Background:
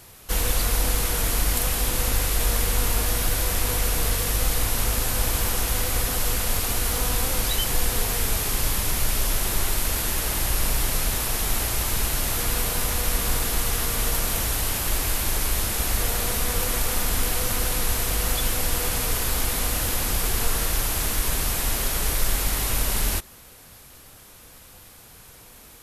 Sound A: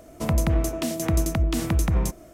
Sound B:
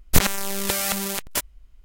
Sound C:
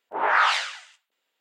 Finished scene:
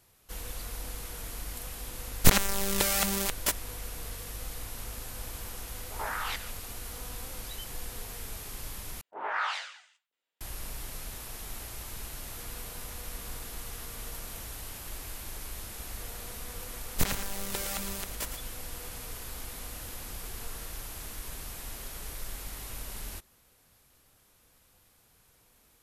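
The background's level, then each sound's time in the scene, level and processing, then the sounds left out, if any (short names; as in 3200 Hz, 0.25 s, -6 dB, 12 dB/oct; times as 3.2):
background -16.5 dB
2.11 add B -3 dB
5.78 add C -9 dB + level quantiser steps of 13 dB
9.01 replace with C -11.5 dB
16.85 add B -11.5 dB + echo 0.113 s -9 dB
not used: A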